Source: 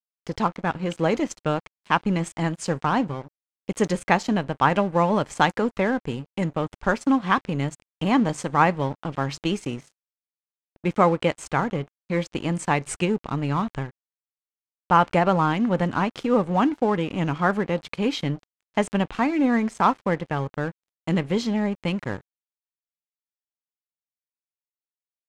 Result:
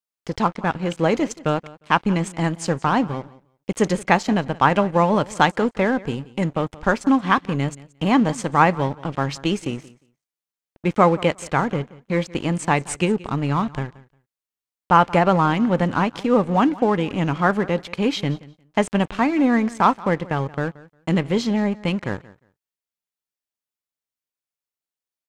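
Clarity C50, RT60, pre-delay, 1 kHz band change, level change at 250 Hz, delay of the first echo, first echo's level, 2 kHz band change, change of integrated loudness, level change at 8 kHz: none, none, none, +3.0 dB, +3.0 dB, 0.177 s, -20.5 dB, +3.0 dB, +3.0 dB, +3.0 dB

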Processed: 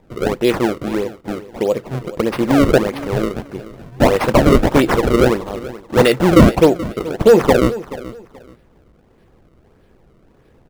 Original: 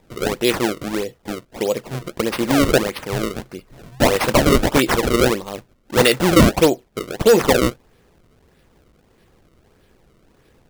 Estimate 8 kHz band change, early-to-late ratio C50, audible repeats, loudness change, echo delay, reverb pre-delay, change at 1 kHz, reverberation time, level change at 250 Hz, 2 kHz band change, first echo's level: -6.0 dB, none, 2, +2.5 dB, 0.429 s, none, +2.0 dB, none, +4.0 dB, -0.5 dB, -16.5 dB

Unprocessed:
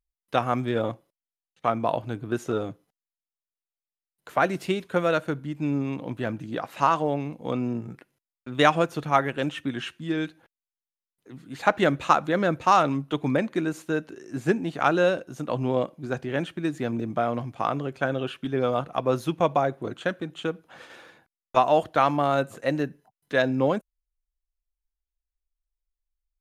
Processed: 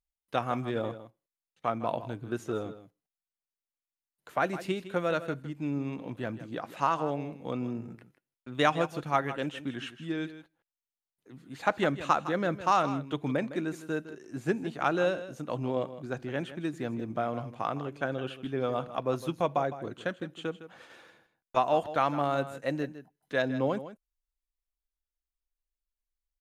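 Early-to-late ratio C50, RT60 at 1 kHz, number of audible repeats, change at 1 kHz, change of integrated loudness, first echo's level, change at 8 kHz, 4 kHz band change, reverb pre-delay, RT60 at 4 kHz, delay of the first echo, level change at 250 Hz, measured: none, none, 1, -6.0 dB, -6.0 dB, -13.5 dB, -6.0 dB, -6.0 dB, none, none, 0.159 s, -6.0 dB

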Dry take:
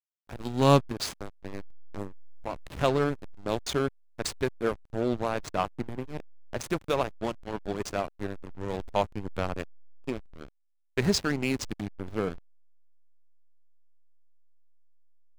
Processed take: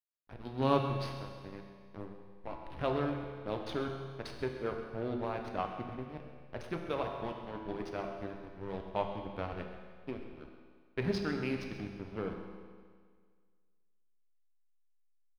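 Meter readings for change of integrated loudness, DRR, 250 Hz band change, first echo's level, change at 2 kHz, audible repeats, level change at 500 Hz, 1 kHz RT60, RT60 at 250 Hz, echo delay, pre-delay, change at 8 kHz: -7.5 dB, 2.5 dB, -6.5 dB, -14.0 dB, -7.5 dB, 1, -7.0 dB, 1.8 s, 1.8 s, 0.132 s, 6 ms, under -20 dB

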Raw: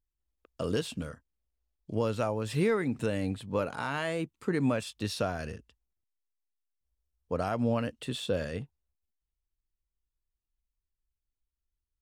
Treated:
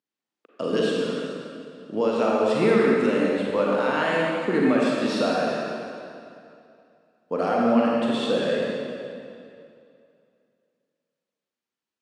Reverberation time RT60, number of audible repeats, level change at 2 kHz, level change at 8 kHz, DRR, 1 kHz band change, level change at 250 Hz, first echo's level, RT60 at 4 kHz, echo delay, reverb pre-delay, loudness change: 2.6 s, none, +10.0 dB, +2.0 dB, -4.0 dB, +10.5 dB, +9.5 dB, none, 2.1 s, none, 35 ms, +9.0 dB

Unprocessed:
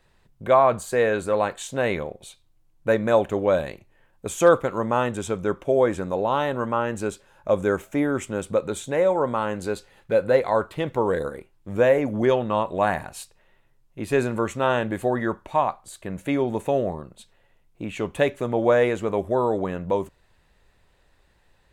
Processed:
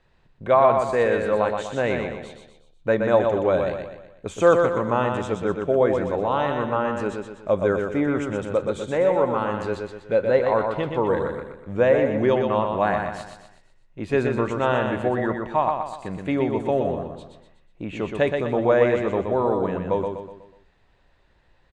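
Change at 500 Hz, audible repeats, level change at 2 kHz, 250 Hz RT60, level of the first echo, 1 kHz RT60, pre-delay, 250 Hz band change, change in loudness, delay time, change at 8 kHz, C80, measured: +1.0 dB, 5, +0.5 dB, none, -5.0 dB, none, none, +1.0 dB, +1.0 dB, 0.123 s, n/a, none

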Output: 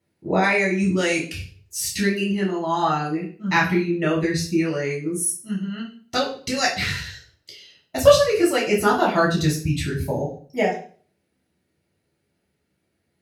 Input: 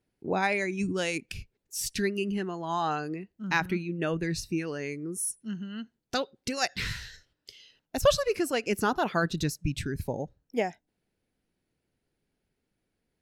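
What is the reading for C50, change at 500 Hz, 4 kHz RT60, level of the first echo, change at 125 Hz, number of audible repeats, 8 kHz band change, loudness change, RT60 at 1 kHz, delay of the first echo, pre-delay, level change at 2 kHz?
7.5 dB, +9.5 dB, 0.40 s, none, +9.0 dB, none, +7.5 dB, +9.0 dB, 0.45 s, none, 3 ms, +8.5 dB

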